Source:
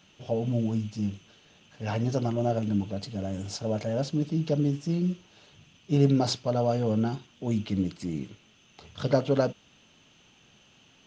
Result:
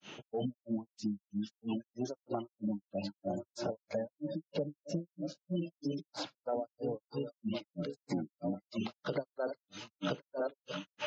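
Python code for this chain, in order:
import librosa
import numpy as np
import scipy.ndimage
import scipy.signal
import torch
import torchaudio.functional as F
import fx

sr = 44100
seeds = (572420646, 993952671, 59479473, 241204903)

y = fx.reverse_delay_fb(x, sr, ms=583, feedback_pct=59, wet_db=-11)
y = fx.recorder_agc(y, sr, target_db=-17.5, rise_db_per_s=30.0, max_gain_db=30)
y = scipy.signal.sosfilt(scipy.signal.butter(2, 200.0, 'highpass', fs=sr, output='sos'), y)
y = fx.echo_feedback(y, sr, ms=70, feedback_pct=30, wet_db=-22)
y = fx.granulator(y, sr, seeds[0], grain_ms=225.0, per_s=3.1, spray_ms=100.0, spread_st=0)
y = fx.noise_reduce_blind(y, sr, reduce_db=15)
y = fx.spec_gate(y, sr, threshold_db=-25, keep='strong')
y = fx.band_squash(y, sr, depth_pct=100)
y = F.gain(torch.from_numpy(y), -4.0).numpy()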